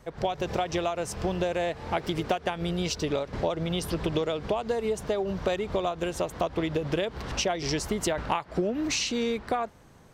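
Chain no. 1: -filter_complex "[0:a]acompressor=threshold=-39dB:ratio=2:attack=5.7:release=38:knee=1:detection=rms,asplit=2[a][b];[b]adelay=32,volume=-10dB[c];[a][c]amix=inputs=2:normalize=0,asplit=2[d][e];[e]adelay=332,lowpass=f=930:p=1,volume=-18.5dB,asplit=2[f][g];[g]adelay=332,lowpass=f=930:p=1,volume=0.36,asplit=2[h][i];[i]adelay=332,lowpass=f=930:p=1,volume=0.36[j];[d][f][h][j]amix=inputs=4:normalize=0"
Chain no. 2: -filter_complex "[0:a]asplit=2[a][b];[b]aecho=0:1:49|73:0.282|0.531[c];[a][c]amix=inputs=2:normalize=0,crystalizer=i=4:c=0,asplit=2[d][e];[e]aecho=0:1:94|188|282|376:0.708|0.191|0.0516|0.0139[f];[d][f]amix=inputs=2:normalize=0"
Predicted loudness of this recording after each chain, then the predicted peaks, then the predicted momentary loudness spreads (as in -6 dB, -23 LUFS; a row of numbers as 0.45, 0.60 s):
-36.0, -22.5 LUFS; -22.0, -4.5 dBFS; 3, 7 LU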